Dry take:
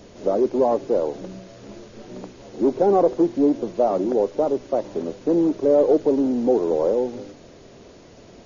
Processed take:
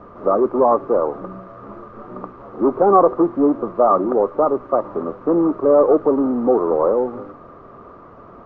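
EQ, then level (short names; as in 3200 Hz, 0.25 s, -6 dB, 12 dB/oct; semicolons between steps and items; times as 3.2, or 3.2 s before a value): synth low-pass 1200 Hz, resonance Q 13; +1.5 dB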